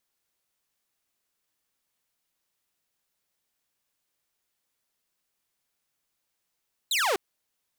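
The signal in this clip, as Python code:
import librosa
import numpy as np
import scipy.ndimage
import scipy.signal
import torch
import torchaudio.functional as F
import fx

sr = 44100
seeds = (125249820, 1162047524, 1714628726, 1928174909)

y = fx.laser_zap(sr, level_db=-20, start_hz=4200.0, end_hz=350.0, length_s=0.25, wave='saw')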